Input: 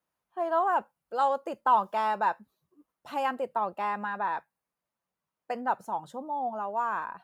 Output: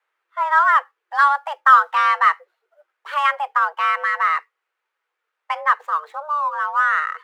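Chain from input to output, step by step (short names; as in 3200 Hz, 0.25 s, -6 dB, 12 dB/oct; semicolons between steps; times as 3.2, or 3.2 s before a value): median filter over 9 samples; bell 1800 Hz +11.5 dB 2.6 oct; frequency shift +300 Hz; gain +3.5 dB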